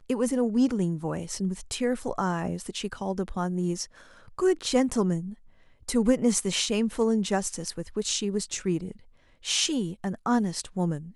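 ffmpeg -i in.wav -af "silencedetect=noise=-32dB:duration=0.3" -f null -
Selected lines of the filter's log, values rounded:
silence_start: 3.84
silence_end: 4.39 | silence_duration: 0.54
silence_start: 5.30
silence_end: 5.89 | silence_duration: 0.59
silence_start: 8.91
silence_end: 9.46 | silence_duration: 0.55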